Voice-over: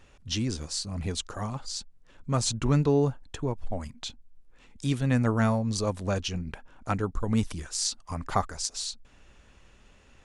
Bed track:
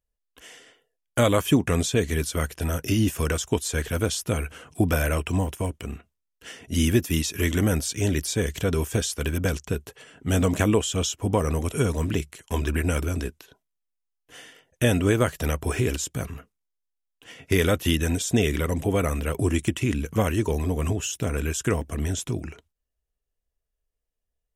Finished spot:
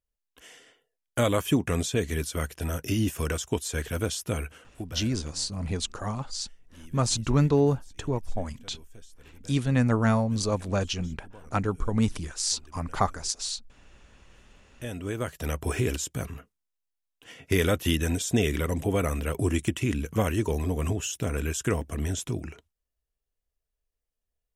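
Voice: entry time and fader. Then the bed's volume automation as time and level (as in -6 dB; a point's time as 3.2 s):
4.65 s, +1.5 dB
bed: 4.45 s -4 dB
5.22 s -27.5 dB
14.18 s -27.5 dB
15.63 s -2.5 dB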